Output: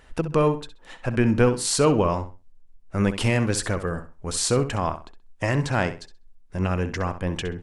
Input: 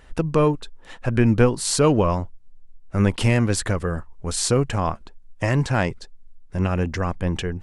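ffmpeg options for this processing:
-filter_complex "[0:a]lowshelf=f=220:g=-4,asplit=2[s0][s1];[s1]adelay=65,lowpass=f=5000:p=1,volume=0.282,asplit=2[s2][s3];[s3]adelay=65,lowpass=f=5000:p=1,volume=0.24,asplit=2[s4][s5];[s5]adelay=65,lowpass=f=5000:p=1,volume=0.24[s6];[s0][s2][s4][s6]amix=inputs=4:normalize=0,volume=0.891"

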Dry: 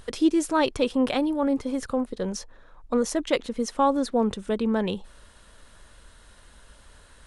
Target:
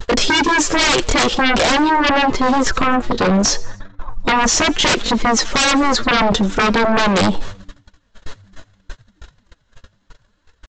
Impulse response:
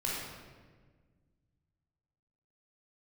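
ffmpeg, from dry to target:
-filter_complex "[0:a]atempo=0.68,asplit=2[s0][s1];[s1]acompressor=threshold=0.0316:ratio=6,volume=1[s2];[s0][s2]amix=inputs=2:normalize=0,flanger=delay=2:depth=7.9:regen=36:speed=0.76:shape=triangular,agate=range=0.0158:threshold=0.00794:ratio=16:detection=peak,aresample=16000,aeval=exprs='0.282*sin(PI/2*7.94*val(0)/0.282)':c=same,aresample=44100,asplit=4[s3][s4][s5][s6];[s4]adelay=86,afreqshift=94,volume=0.075[s7];[s5]adelay=172,afreqshift=188,volume=0.0367[s8];[s6]adelay=258,afreqshift=282,volume=0.018[s9];[s3][s7][s8][s9]amix=inputs=4:normalize=0"

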